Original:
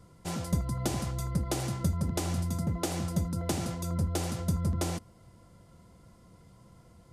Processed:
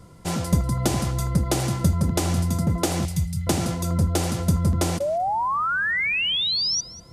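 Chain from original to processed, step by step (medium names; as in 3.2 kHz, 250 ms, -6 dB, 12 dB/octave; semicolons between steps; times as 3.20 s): 3.05–3.47 s: elliptic band-stop 150–2100 Hz; 5.00–6.81 s: painted sound rise 550–6000 Hz -32 dBFS; on a send: thinning echo 193 ms, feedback 17%, high-pass 220 Hz, level -18 dB; on the sum: trim +8.5 dB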